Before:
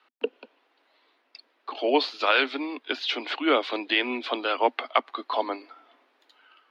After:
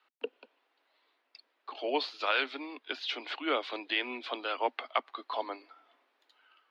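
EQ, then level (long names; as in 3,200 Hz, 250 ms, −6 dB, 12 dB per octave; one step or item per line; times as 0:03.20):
high-pass filter 370 Hz 6 dB per octave
−7.0 dB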